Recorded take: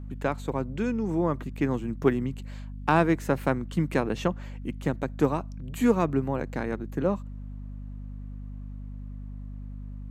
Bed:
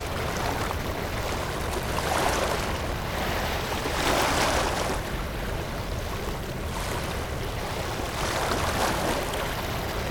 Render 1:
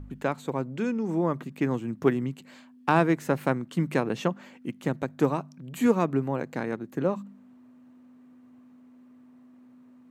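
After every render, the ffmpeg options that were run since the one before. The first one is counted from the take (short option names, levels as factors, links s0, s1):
-af "bandreject=f=50:t=h:w=4,bandreject=f=100:t=h:w=4,bandreject=f=150:t=h:w=4,bandreject=f=200:t=h:w=4"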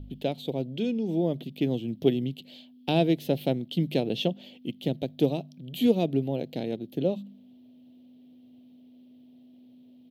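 -af "firequalizer=gain_entry='entry(680,0);entry(1100,-25);entry(1600,-19);entry(3200,13);entry(7200,-12);entry(12000,4)':delay=0.05:min_phase=1"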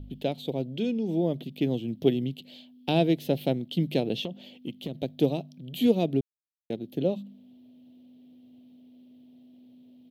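-filter_complex "[0:a]asettb=1/sr,asplit=3[s0][s1][s2];[s0]atrim=end=4.174[s3];[s1]atrim=start=4.17:end=5.01,asetpts=PTS-STARTPTS,afade=t=in:d=0.004:c=qsin,afade=t=out:st=0.836:d=0.004:c=qsin,acompressor=threshold=0.0398:ratio=12:attack=3.2:release=140:knee=1:detection=peak[s4];[s2]atrim=start=5.006[s5];[s3][s4]acrossfade=d=0.004:c1=hsin:c2=qsin[s6];[s6][s5]acrossfade=d=0.004:c1=qsin:c2=hsin,asplit=3[s7][s8][s9];[s7]atrim=end=6.21,asetpts=PTS-STARTPTS,afade=t=out:st=6.206:d=0.004:c=hsin[s10];[s8]atrim=start=6.21:end=6.7,asetpts=PTS-STARTPTS,volume=0[s11];[s9]atrim=start=6.7,asetpts=PTS-STARTPTS,afade=t=in:d=0.004:c=hsin[s12];[s10][s11][s12]concat=n=3:v=0:a=1"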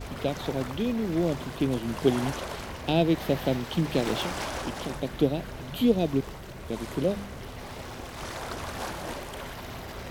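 -filter_complex "[1:a]volume=0.335[s0];[0:a][s0]amix=inputs=2:normalize=0"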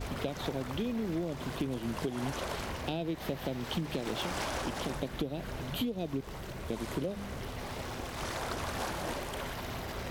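-af "alimiter=limit=0.158:level=0:latency=1:release=205,acompressor=threshold=0.0316:ratio=10"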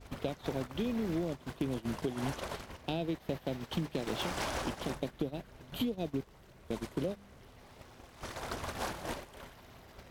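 -af "agate=range=0.158:threshold=0.0178:ratio=16:detection=peak"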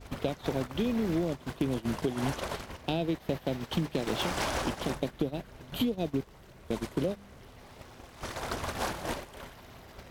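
-af "volume=1.68"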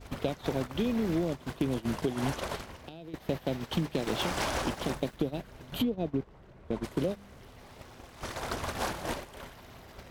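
-filter_complex "[0:a]asettb=1/sr,asplit=3[s0][s1][s2];[s0]atrim=end=2.624[s3];[s1]atrim=start=2.62:end=3.14,asetpts=PTS-STARTPTS,afade=t=in:d=0.004:c=qsin,afade=t=out:st=0.516:d=0.004:c=qsin,acompressor=threshold=0.01:ratio=20:attack=3.2:release=140:knee=1:detection=peak[s4];[s2]atrim=start=3.136[s5];[s3][s4]acrossfade=d=0.004:c1=hsin:c2=qsin[s6];[s6][s5]acrossfade=d=0.004:c1=qsin:c2=hsin,asettb=1/sr,asplit=3[s7][s8][s9];[s7]atrim=end=3.964[s10];[s8]atrim=start=3.96:end=5.17,asetpts=PTS-STARTPTS,afade=t=in:d=0.004:c=qsin,afade=t=out:st=1.206:d=0.004:c=qsin,aeval=exprs='val(0)*gte(abs(val(0)),0.00251)':c=same[s11];[s9]atrim=start=5.166[s12];[s10][s11]acrossfade=d=0.004:c1=hsin:c2=qsin[s13];[s13][s12]acrossfade=d=0.004:c1=qsin:c2=hsin,asplit=3[s14][s15][s16];[s14]afade=t=out:st=5.81:d=0.02[s17];[s15]lowpass=f=1400:p=1,afade=t=in:st=5.81:d=0.02,afade=t=out:st=6.83:d=0.02[s18];[s16]afade=t=in:st=6.83:d=0.02[s19];[s17][s18][s19]amix=inputs=3:normalize=0"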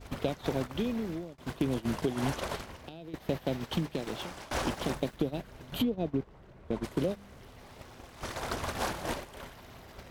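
-filter_complex "[0:a]asplit=3[s0][s1][s2];[s0]atrim=end=1.38,asetpts=PTS-STARTPTS,afade=t=out:st=0.42:d=0.96:c=qsin:silence=0.0630957[s3];[s1]atrim=start=1.38:end=4.51,asetpts=PTS-STARTPTS,afade=t=in:d=0.004:c=hsin:silence=0.0630957,afade=t=out:st=2.29:d=0.84:silence=0.0794328[s4];[s2]atrim=start=4.51,asetpts=PTS-STARTPTS,afade=t=in:d=0.004:c=hsin:silence=0.0794328[s5];[s3][s4][s5]concat=n=3:v=0:a=1"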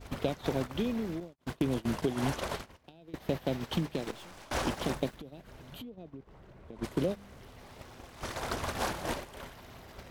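-filter_complex "[0:a]asettb=1/sr,asplit=3[s0][s1][s2];[s0]atrim=end=1.204[s3];[s1]atrim=start=1.2:end=3.15,asetpts=PTS-STARTPTS,afade=t=in:d=0.004:c=qsin,afade=t=out:st=1.946:d=0.004:c=qsin,agate=range=0.0224:threshold=0.0112:ratio=3:release=100:detection=peak[s4];[s2]atrim=start=3.146[s5];[s3][s4]acrossfade=d=0.004:c1=hsin:c2=qsin[s6];[s6][s5]acrossfade=d=0.004:c1=qsin:c2=hsin,asettb=1/sr,asplit=3[s7][s8][s9];[s7]atrim=end=4.114[s10];[s8]atrim=start=4.11:end=4.51,asetpts=PTS-STARTPTS,afade=t=in:d=0.004:c=qsin,afade=t=out:st=0.396:d=0.004:c=qsin,aeval=exprs='(tanh(224*val(0)+0.5)-tanh(0.5))/224':c=same[s11];[s9]atrim=start=4.506[s12];[s10][s11]acrossfade=d=0.004:c1=hsin:c2=qsin[s13];[s13][s12]acrossfade=d=0.004:c1=qsin:c2=hsin,asettb=1/sr,asplit=3[s14][s15][s16];[s14]atrim=end=5.134[s17];[s15]atrim=start=5.13:end=6.79,asetpts=PTS-STARTPTS,afade=t=in:d=0.004:c=qsin,afade=t=out:st=1.656:d=0.004:c=qsin,acompressor=threshold=0.00562:ratio=4:attack=3.2:release=140:knee=1:detection=peak[s18];[s16]atrim=start=6.786[s19];[s17][s18]acrossfade=d=0.004:c1=hsin:c2=qsin[s20];[s20][s19]acrossfade=d=0.004:c1=qsin:c2=hsin"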